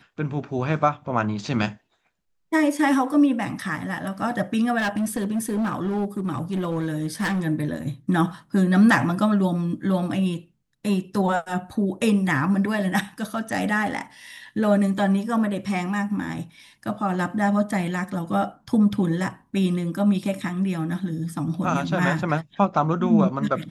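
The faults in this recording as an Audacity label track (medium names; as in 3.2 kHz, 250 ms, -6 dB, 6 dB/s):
4.780000	7.400000	clipped -20.5 dBFS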